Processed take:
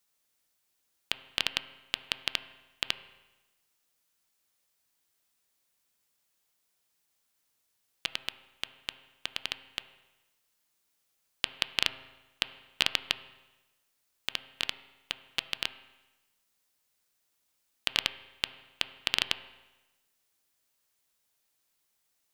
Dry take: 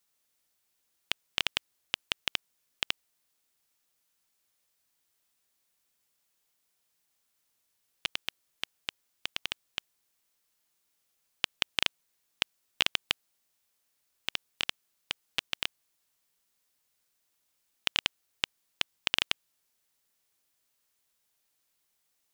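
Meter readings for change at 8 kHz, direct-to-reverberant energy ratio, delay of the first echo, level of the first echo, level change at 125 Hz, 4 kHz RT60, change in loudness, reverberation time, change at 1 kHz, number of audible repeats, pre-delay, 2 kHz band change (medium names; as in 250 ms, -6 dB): 0.0 dB, 11.5 dB, no echo, no echo, +0.5 dB, 1.0 s, +0.5 dB, 1.1 s, +0.5 dB, no echo, 8 ms, 0.0 dB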